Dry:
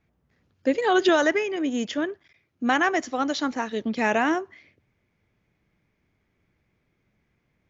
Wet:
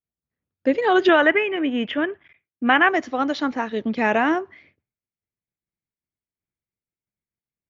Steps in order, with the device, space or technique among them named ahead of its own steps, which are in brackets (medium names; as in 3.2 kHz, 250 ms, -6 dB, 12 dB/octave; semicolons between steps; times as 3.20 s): hearing-loss simulation (low-pass 3.4 kHz 12 dB/octave; expander -53 dBFS); 1.09–2.89 s: FFT filter 520 Hz 0 dB, 3 kHz +6 dB, 4.5 kHz -13 dB; trim +3 dB